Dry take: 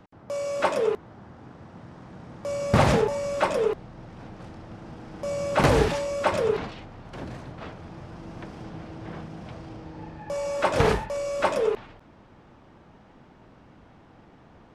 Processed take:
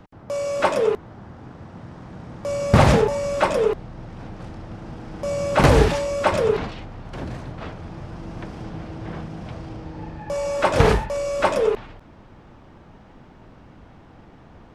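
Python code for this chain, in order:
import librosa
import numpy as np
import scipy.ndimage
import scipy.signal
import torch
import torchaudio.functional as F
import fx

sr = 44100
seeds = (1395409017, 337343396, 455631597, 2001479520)

y = fx.low_shelf(x, sr, hz=80.0, db=8.0)
y = y * 10.0 ** (4.0 / 20.0)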